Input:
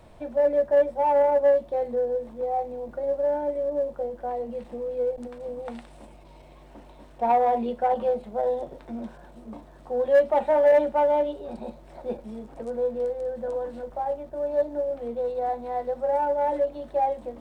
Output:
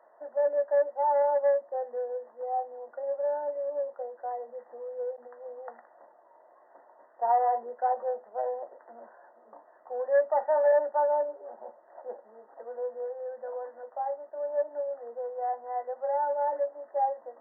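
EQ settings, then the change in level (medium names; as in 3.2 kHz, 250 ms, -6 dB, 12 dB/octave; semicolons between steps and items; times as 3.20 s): ladder high-pass 480 Hz, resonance 25%; brick-wall FIR low-pass 2 kHz; +1.0 dB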